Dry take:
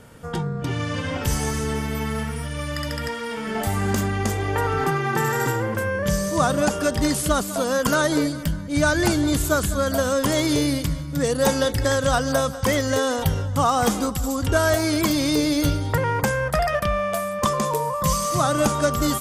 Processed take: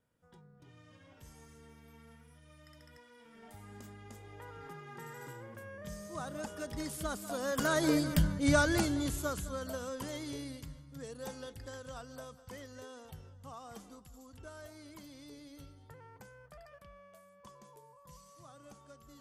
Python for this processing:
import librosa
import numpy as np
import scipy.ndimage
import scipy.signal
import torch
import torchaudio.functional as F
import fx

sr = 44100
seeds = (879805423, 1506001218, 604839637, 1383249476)

y = fx.doppler_pass(x, sr, speed_mps=12, closest_m=3.1, pass_at_s=8.24)
y = y * 10.0 ** (-3.0 / 20.0)